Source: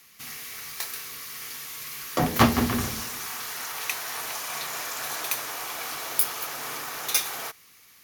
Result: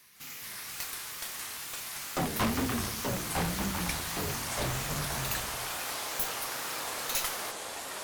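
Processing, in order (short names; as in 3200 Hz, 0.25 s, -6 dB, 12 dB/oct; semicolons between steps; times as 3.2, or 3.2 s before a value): tube stage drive 22 dB, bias 0.5; wow and flutter 150 cents; echoes that change speed 0.153 s, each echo -5 st, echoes 2; gain -2.5 dB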